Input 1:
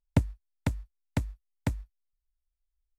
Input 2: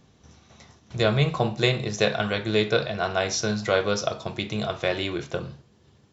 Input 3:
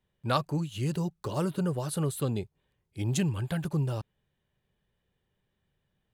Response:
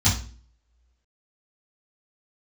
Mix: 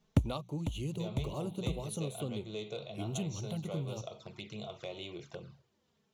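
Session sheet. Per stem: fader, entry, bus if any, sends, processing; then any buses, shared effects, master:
+3.0 dB, 0.00 s, no bus, no send, automatic ducking −10 dB, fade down 0.30 s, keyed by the third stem
−11.0 dB, 0.00 s, bus A, no send, notch filter 1,700 Hz, Q 9.1; soft clipping −14 dBFS, distortion −16 dB; parametric band 270 Hz −7 dB 0.55 octaves
−0.5 dB, 0.00 s, bus A, no send, mains-hum notches 60/120/180 Hz
bus A: 0.0 dB, high-pass filter 110 Hz; downward compressor 2 to 1, threshold −38 dBFS, peak gain reduction 9.5 dB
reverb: not used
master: flanger swept by the level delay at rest 5.1 ms, full sweep at −39 dBFS

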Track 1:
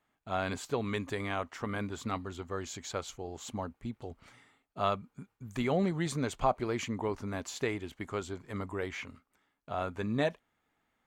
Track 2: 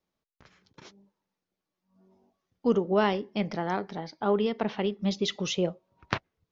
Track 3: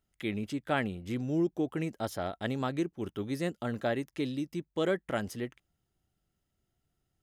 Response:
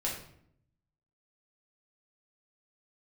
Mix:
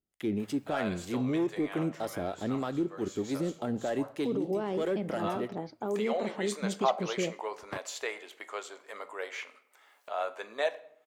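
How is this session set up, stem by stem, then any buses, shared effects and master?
0.0 dB, 0.40 s, no bus, send −12.5 dB, Chebyshev high-pass filter 520 Hz, order 3; upward compression, threshold −43 dBFS; automatic ducking −14 dB, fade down 2.00 s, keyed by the third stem
−10.5 dB, 1.60 s, bus A, no send, no processing
−11.5 dB, 0.00 s, bus A, send −16 dB, high-shelf EQ 4,200 Hz +8 dB; leveller curve on the samples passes 2; two-band tremolo in antiphase 3.2 Hz, depth 70%, crossover 480 Hz
bus A: 0.0 dB, parametric band 360 Hz +12.5 dB 2.8 octaves; brickwall limiter −23.5 dBFS, peak gain reduction 11.5 dB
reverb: on, RT60 0.65 s, pre-delay 5 ms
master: no processing

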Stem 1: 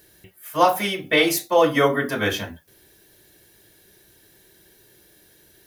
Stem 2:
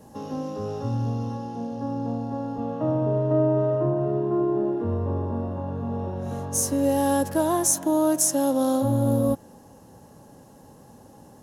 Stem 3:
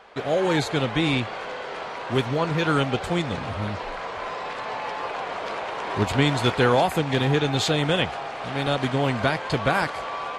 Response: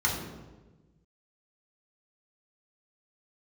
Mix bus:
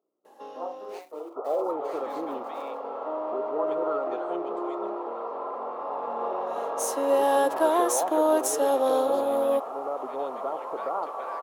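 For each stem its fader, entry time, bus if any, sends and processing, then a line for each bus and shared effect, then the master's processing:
−13.0 dB, 0.00 s, bus A, no send, echo send −11 dB, running median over 41 samples; high-shelf EQ 4,500 Hz +11.5 dB; mains hum 60 Hz, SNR 27 dB
+2.5 dB, 0.25 s, muted 0:00.99–0:02.00, no bus, no send, no echo send, flat-topped bell 7,900 Hz −10 dB; automatic ducking −8 dB, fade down 0.70 s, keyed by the first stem
−1.0 dB, 1.20 s, bus A, no send, echo send −19 dB, high-shelf EQ 2,600 Hz −9.5 dB
bus A: 0.0 dB, linear-phase brick-wall low-pass 1,400 Hz; brickwall limiter −18 dBFS, peak gain reduction 8.5 dB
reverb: not used
echo: single-tap delay 330 ms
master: high-pass filter 400 Hz 24 dB per octave

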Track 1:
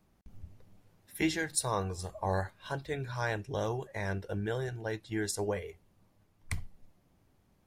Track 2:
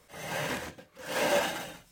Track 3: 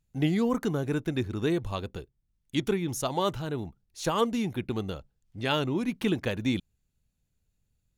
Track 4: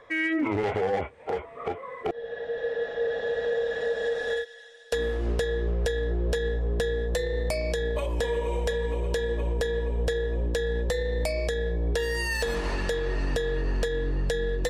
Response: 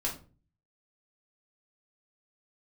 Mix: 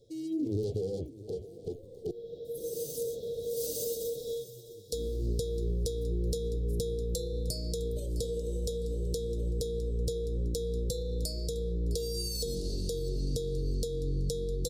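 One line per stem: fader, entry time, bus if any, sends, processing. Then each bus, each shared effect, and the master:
−5.0 dB, 1.40 s, no send, no echo send, flat-topped bell 3,800 Hz −15.5 dB 2.8 octaves; downward compressor, threshold −41 dBFS, peak gain reduction 15 dB
−9.5 dB, 2.45 s, no send, echo send −17 dB, high-shelf EQ 3,500 Hz +11 dB; comb filter 6.7 ms
−10.0 dB, 0.00 s, no send, no echo send, downward compressor 2 to 1, threshold −38 dBFS, peak gain reduction 10.5 dB; phaser with its sweep stopped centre 880 Hz, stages 6
+0.5 dB, 0.00 s, no send, echo send −17 dB, octave-band graphic EQ 125/2,000/4,000 Hz +9/−6/+5 dB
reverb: not used
echo: repeating echo 658 ms, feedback 30%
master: Chebyshev band-stop filter 450–4,400 Hz, order 3; high-shelf EQ 7,700 Hz +12 dB; tuned comb filter 360 Hz, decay 0.67 s, mix 50%

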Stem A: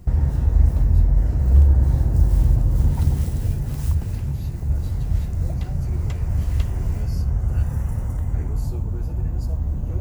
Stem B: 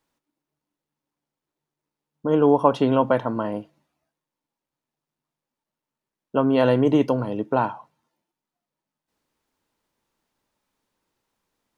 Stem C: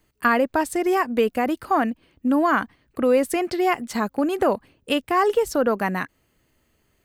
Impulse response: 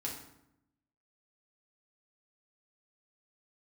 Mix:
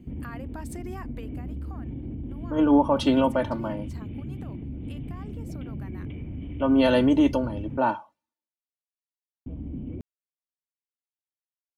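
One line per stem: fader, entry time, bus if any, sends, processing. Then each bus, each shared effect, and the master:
−0.5 dB, 0.00 s, muted 0:07.78–0:09.46, bus A, no send, downward compressor, threshold −18 dBFS, peak gain reduction 9.5 dB; mid-hump overdrive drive 26 dB, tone 1,400 Hz, clips at −12 dBFS; formant resonators in series i
−3.0 dB, 0.25 s, no bus, no send, comb filter 3.4 ms, depth 72%; brickwall limiter −9.5 dBFS, peak gain reduction 7.5 dB; multiband upward and downward expander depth 100%
0:01.05 −8.5 dB → 0:01.45 −19 dB, 0.00 s, bus A, no send, parametric band 480 Hz −5.5 dB 0.45 octaves; downward compressor, threshold −25 dBFS, peak gain reduction 10.5 dB
bus A: 0.0 dB, brickwall limiter −27.5 dBFS, peak gain reduction 8.5 dB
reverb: not used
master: no processing

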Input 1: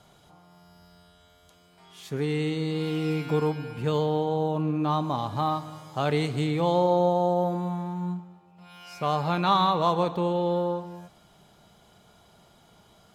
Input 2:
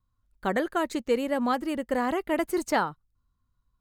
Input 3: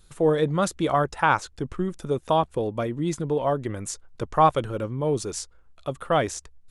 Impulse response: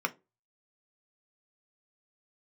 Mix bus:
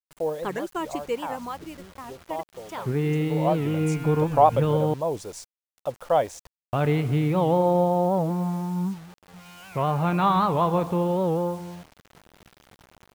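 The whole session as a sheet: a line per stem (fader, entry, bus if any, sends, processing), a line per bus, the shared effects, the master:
+0.5 dB, 0.75 s, muted 0:04.94–0:06.73, no send, low-pass filter 2,900 Hz 24 dB per octave; parametric band 69 Hz +10 dB 2.1 octaves
0:01.18 −3.5 dB → 0:01.80 −11 dB, 0.00 s, no send, reverb reduction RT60 0.78 s; EQ curve with evenly spaced ripples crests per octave 0.72, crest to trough 7 dB; gate pattern "x..xxxxxxxxxx.x." 106 BPM −24 dB
−8.0 dB, 0.00 s, no send, flat-topped bell 690 Hz +10.5 dB 1.2 octaves; automatic ducking −13 dB, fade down 0.65 s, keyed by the second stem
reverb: not used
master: bit reduction 8 bits; wow of a warped record 78 rpm, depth 160 cents

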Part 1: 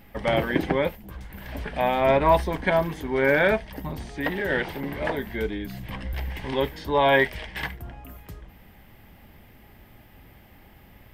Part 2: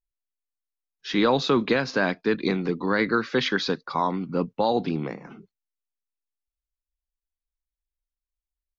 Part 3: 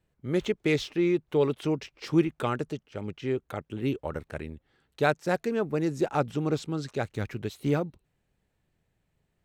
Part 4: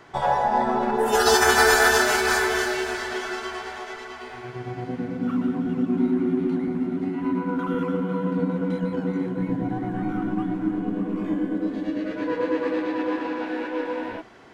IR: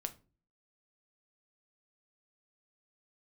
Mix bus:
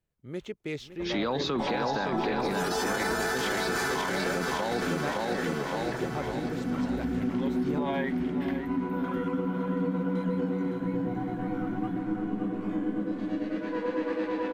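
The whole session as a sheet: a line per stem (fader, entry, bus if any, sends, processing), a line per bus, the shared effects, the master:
−11.0 dB, 0.85 s, no send, echo send −13 dB, high-shelf EQ 4,100 Hz −7.5 dB
−2.5 dB, 0.00 s, no send, echo send −4 dB, no processing
−10.0 dB, 0.00 s, no send, echo send −13.5 dB, no processing
−5.5 dB, 1.45 s, no send, echo send −6.5 dB, no processing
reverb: not used
echo: repeating echo 562 ms, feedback 56%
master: brickwall limiter −20 dBFS, peak gain reduction 12.5 dB

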